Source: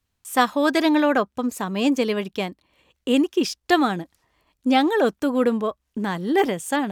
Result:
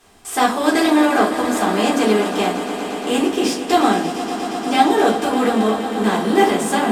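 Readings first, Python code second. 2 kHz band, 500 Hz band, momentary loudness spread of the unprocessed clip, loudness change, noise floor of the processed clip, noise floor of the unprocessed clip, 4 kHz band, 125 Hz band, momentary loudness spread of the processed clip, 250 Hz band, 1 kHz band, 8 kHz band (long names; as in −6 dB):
+4.5 dB, +4.5 dB, 10 LU, +4.5 dB, −28 dBFS, −76 dBFS, +5.0 dB, +4.5 dB, 9 LU, +4.0 dB, +7.0 dB, +8.5 dB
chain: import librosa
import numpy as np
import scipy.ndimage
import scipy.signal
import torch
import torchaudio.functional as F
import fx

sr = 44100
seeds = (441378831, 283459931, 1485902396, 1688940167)

p1 = fx.bin_compress(x, sr, power=0.6)
p2 = fx.peak_eq(p1, sr, hz=8200.0, db=7.0, octaves=0.79)
p3 = p2 + fx.echo_swell(p2, sr, ms=117, loudest=5, wet_db=-14.5, dry=0)
p4 = fx.room_shoebox(p3, sr, seeds[0], volume_m3=150.0, walls='furnished', distance_m=3.7)
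y = p4 * librosa.db_to_amplitude(-8.0)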